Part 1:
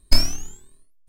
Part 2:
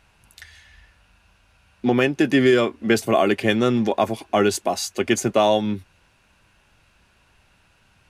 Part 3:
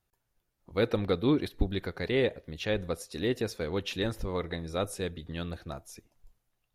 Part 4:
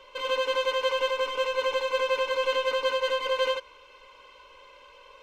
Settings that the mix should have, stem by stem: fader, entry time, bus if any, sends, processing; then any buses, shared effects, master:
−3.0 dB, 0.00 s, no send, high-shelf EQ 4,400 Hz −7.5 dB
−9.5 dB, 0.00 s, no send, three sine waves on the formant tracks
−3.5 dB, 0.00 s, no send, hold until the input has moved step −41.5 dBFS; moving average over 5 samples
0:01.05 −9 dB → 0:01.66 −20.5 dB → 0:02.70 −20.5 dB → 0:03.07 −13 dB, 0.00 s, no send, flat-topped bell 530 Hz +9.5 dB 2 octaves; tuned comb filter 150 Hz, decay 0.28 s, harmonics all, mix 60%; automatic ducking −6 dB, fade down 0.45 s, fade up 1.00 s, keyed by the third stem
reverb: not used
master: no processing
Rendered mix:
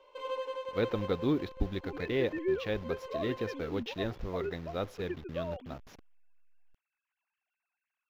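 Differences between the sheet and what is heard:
stem 1: muted
stem 2 −9.5 dB → −19.5 dB

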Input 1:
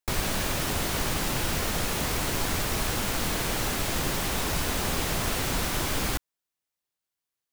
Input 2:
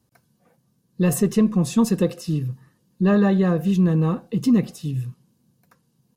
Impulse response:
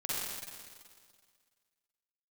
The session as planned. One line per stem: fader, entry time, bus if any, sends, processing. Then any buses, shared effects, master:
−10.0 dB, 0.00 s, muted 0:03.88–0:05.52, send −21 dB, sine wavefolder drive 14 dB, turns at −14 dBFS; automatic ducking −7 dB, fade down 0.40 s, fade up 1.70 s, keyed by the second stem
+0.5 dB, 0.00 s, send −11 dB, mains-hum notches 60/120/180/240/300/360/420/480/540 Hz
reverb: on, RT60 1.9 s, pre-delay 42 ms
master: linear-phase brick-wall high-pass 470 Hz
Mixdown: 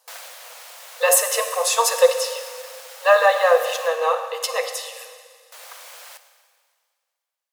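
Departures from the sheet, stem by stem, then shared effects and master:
stem 1 −10.0 dB → −17.5 dB
stem 2 +0.5 dB → +10.5 dB

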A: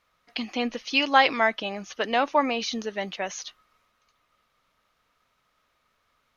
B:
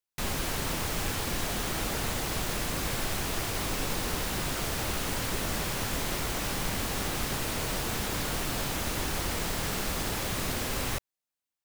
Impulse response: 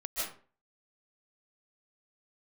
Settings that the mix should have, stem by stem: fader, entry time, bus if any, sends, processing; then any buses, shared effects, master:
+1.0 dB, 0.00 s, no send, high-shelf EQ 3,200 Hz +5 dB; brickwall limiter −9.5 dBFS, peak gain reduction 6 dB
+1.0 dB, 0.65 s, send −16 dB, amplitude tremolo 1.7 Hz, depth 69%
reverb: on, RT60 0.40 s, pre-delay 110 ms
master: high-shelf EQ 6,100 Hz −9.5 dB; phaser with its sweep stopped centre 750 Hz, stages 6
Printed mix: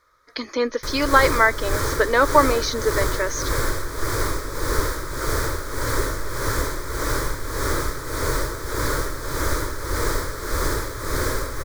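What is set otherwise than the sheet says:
stem A +1.0 dB → +10.5 dB
stem B +1.0 dB → +12.5 dB

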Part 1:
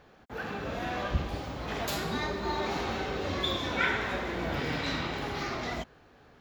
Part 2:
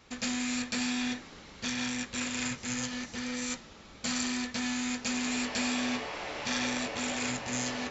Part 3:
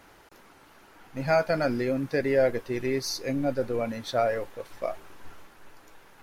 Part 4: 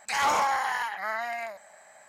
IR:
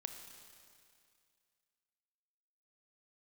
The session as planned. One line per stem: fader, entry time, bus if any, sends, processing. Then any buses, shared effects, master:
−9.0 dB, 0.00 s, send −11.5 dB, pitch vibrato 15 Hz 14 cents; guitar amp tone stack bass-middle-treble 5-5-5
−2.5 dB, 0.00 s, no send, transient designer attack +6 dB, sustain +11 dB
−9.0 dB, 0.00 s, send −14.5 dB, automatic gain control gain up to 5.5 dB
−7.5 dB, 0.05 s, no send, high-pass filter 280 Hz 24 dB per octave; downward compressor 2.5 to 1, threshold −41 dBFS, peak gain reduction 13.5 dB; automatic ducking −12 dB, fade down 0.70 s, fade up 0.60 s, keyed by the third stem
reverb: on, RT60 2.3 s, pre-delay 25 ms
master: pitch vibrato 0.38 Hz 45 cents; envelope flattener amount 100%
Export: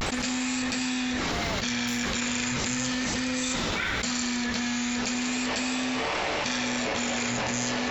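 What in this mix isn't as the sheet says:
stem 3: muted
stem 4 −7.5 dB → −14.0 dB

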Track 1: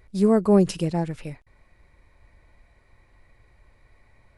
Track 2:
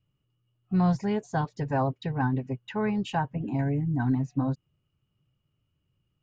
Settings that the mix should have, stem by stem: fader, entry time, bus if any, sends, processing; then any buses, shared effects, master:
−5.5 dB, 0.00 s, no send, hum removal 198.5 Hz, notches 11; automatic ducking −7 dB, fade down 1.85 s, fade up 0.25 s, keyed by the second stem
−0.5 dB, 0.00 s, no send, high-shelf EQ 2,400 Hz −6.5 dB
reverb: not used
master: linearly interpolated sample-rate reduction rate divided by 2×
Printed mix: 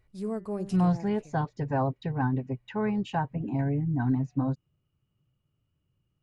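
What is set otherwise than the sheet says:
stem 1 −5.5 dB → −13.0 dB
master: missing linearly interpolated sample-rate reduction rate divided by 2×

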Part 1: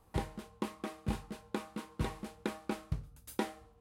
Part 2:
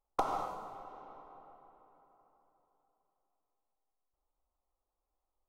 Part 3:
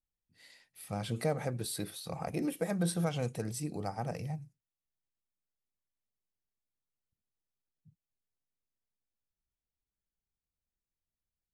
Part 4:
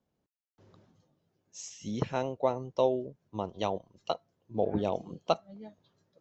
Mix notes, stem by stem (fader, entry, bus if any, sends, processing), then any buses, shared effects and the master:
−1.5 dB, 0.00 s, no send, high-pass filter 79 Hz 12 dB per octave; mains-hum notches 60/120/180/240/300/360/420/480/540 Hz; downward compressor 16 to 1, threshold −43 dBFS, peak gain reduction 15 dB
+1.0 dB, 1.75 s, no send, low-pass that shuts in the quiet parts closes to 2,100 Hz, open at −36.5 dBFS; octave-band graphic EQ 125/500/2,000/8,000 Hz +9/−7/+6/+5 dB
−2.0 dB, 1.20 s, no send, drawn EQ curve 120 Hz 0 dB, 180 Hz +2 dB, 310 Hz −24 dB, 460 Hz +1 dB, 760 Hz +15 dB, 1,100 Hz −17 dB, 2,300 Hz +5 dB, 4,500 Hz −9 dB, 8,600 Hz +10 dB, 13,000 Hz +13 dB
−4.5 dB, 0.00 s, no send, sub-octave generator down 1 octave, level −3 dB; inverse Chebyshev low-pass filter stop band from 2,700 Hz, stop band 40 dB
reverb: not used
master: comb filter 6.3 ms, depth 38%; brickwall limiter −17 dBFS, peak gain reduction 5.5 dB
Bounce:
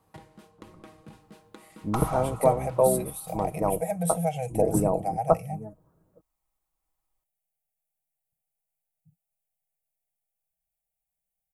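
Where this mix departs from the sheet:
stem 2: missing low-pass that shuts in the quiet parts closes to 2,100 Hz, open at −36.5 dBFS
stem 4 −4.5 dB → +5.0 dB
master: missing brickwall limiter −17 dBFS, peak gain reduction 5.5 dB

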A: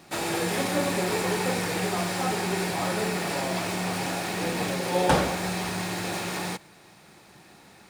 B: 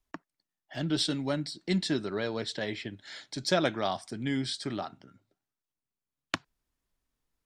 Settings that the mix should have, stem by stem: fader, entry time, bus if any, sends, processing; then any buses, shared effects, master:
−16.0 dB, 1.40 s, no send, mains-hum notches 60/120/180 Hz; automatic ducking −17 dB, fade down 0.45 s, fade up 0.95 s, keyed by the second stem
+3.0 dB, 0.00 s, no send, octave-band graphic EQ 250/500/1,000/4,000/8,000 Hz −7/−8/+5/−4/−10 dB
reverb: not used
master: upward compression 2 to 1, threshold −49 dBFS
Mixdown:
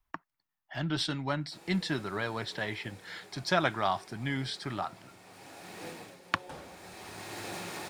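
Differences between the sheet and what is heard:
stem A −16.0 dB → −8.5 dB
master: missing upward compression 2 to 1, threshold −49 dBFS

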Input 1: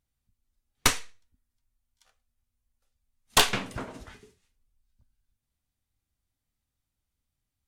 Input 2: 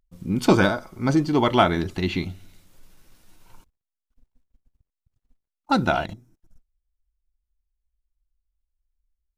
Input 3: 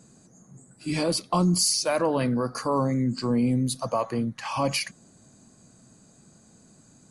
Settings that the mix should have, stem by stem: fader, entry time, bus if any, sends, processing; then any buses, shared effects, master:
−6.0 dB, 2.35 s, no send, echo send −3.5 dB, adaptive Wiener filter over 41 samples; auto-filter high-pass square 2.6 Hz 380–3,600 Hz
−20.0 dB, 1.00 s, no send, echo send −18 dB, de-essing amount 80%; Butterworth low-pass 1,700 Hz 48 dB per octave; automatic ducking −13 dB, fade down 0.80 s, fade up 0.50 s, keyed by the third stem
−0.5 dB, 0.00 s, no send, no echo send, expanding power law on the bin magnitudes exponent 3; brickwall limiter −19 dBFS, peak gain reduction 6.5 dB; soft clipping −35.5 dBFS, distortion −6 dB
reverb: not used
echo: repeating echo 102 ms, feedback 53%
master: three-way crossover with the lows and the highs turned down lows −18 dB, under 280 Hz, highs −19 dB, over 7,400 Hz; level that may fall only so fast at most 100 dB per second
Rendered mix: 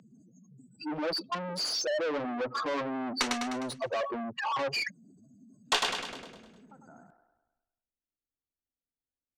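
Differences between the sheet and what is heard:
stem 1: missing auto-filter high-pass square 2.6 Hz 380–3,600 Hz
stem 3 −0.5 dB → +7.5 dB
master: missing level that may fall only so fast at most 100 dB per second

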